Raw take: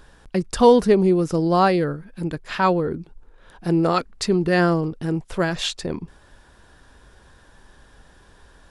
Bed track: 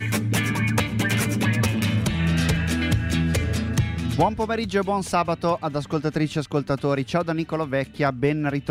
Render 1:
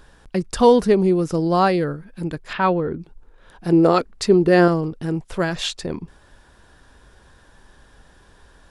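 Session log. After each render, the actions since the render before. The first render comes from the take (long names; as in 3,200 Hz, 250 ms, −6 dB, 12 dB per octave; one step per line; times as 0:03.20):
0:02.53–0:03.00: low-pass filter 3,700 Hz 24 dB per octave
0:03.72–0:04.68: dynamic equaliser 430 Hz, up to +7 dB, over −32 dBFS, Q 0.88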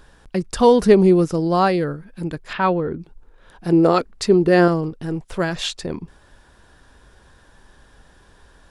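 0:00.82–0:01.25: clip gain +4 dB
0:04.89–0:05.31: gain on one half-wave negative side −3 dB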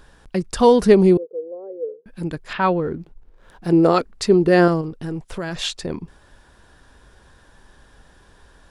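0:01.17–0:02.06: flat-topped band-pass 460 Hz, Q 5.3
0:02.81–0:03.68: slack as between gear wheels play −54.5 dBFS
0:04.81–0:05.62: downward compressor, threshold −23 dBFS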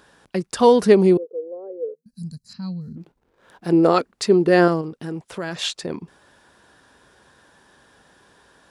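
Bessel high-pass filter 180 Hz, order 2
0:01.94–0:02.97: gain on a spectral selection 250–3,900 Hz −29 dB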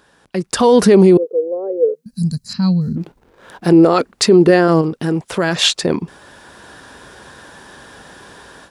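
brickwall limiter −13.5 dBFS, peak gain reduction 11 dB
automatic gain control gain up to 15 dB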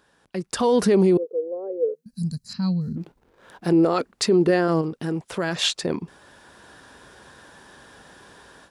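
level −8.5 dB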